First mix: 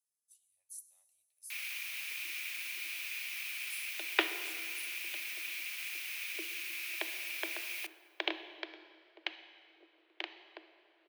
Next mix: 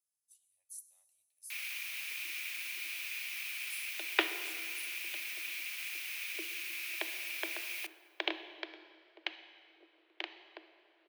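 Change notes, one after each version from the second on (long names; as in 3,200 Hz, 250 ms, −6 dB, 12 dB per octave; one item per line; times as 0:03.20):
nothing changed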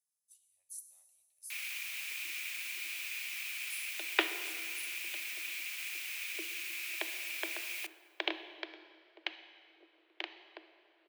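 speech: send +6.5 dB
first sound: add parametric band 7,500 Hz +6 dB 0.27 octaves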